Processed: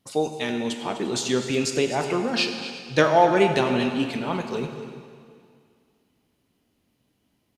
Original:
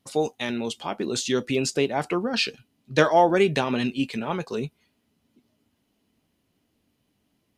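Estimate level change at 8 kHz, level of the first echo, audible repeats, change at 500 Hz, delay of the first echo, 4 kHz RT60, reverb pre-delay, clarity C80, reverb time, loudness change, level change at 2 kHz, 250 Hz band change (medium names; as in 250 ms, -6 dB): +1.0 dB, -14.0 dB, 2, +1.0 dB, 251 ms, 2.1 s, 12 ms, 7.0 dB, 2.2 s, +1.0 dB, +1.0 dB, +1.0 dB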